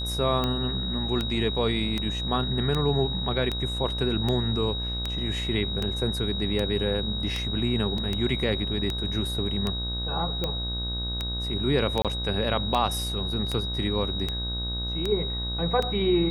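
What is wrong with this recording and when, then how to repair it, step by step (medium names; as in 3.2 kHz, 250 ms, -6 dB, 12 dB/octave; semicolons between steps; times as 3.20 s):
buzz 60 Hz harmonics 28 -32 dBFS
tick 78 rpm -14 dBFS
whine 3.8 kHz -31 dBFS
7.98 s: dropout 2.6 ms
12.02–12.05 s: dropout 27 ms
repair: de-click; de-hum 60 Hz, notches 28; band-stop 3.8 kHz, Q 30; interpolate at 7.98 s, 2.6 ms; interpolate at 12.02 s, 27 ms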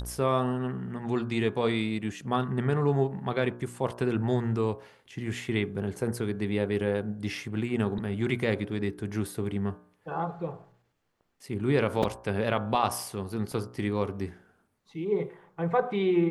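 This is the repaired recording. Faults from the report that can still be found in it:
nothing left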